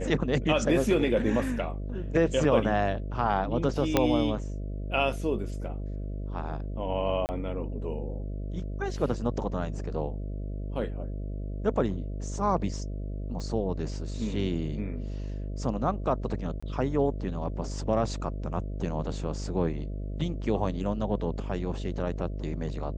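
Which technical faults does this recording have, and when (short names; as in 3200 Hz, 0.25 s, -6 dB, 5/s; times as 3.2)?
buzz 50 Hz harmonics 13 -34 dBFS
3.97 pop -7 dBFS
7.26–7.29 gap 29 ms
13.4 pop -26 dBFS
16.6–16.62 gap 25 ms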